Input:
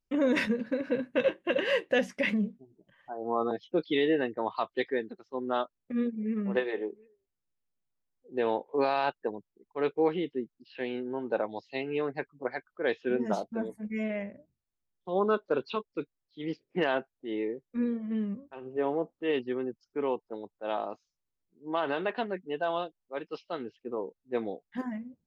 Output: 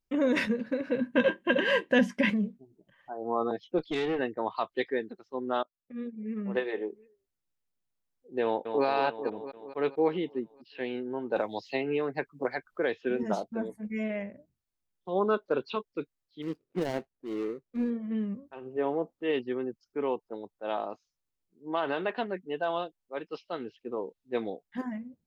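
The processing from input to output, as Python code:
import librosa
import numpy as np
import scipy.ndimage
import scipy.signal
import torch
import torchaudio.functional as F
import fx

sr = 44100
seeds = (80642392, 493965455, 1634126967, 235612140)

y = fx.small_body(x, sr, hz=(220.0, 1000.0, 1600.0, 3100.0), ring_ms=45, db=12, at=(1.01, 2.3))
y = fx.tube_stage(y, sr, drive_db=24.0, bias=0.5, at=(3.78, 4.19))
y = fx.echo_throw(y, sr, start_s=8.43, length_s=0.42, ms=220, feedback_pct=65, wet_db=-7.0)
y = fx.band_squash(y, sr, depth_pct=100, at=(11.36, 13.23))
y = fx.median_filter(y, sr, points=41, at=(16.42, 17.9))
y = fx.peak_eq(y, sr, hz=3500.0, db=6.0, octaves=1.1, at=(23.62, 24.5))
y = fx.edit(y, sr, fx.fade_in_from(start_s=5.63, length_s=1.13, floor_db=-20.0), tone=tone)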